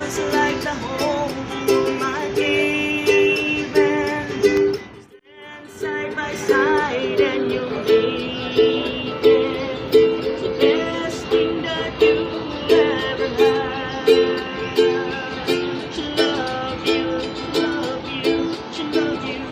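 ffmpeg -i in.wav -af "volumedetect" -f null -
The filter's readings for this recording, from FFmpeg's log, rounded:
mean_volume: -19.8 dB
max_volume: -1.8 dB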